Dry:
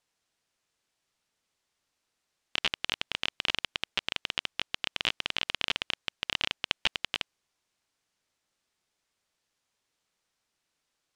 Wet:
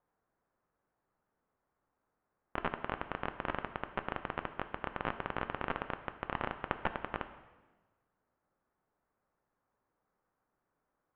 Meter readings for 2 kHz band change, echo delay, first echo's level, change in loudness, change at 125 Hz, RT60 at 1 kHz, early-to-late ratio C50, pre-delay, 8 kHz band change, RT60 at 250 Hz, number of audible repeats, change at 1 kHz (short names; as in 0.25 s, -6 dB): -7.5 dB, none, none, -8.0 dB, +4.5 dB, 1.2 s, 11.5 dB, 3 ms, under -30 dB, 1.4 s, none, +4.0 dB